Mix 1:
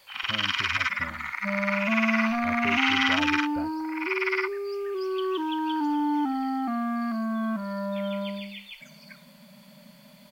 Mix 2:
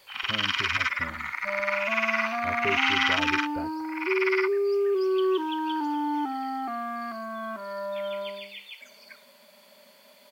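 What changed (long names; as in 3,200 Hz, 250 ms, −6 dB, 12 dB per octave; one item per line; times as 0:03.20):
second sound: add high-pass filter 330 Hz 24 dB per octave
master: add parametric band 410 Hz +8.5 dB 0.4 octaves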